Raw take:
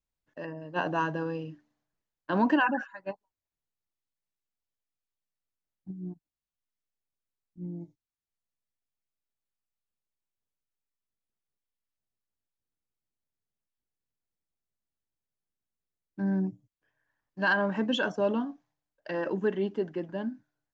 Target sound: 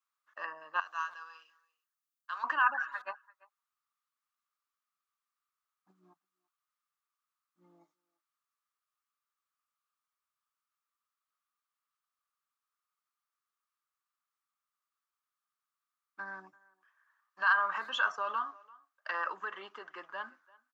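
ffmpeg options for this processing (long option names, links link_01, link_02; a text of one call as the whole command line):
ffmpeg -i in.wav -filter_complex "[0:a]asettb=1/sr,asplit=3[link_01][link_02][link_03];[link_01]atrim=end=0.804[link_04];[link_02]atrim=start=0.8:end=2.44,asetpts=PTS-STARTPTS,afade=type=in:duration=0.004:curve=qsin,afade=type=out:start_time=1.636:duration=0.004:curve=qsin,aderivative[link_05];[link_03]atrim=start=2.436[link_06];[link_04][link_05]acrossfade=duration=0.004:curve1=hsin:curve2=qsin[link_07];[link_07][link_06]acrossfade=duration=0.004:curve1=qsin:curve2=hsin,alimiter=limit=-24dB:level=0:latency=1:release=136,highpass=frequency=1200:width_type=q:width=10,asplit=2[link_08][link_09];[link_09]adelay=340,highpass=300,lowpass=3400,asoftclip=type=hard:threshold=-23dB,volume=-23dB[link_10];[link_08][link_10]amix=inputs=2:normalize=0" out.wav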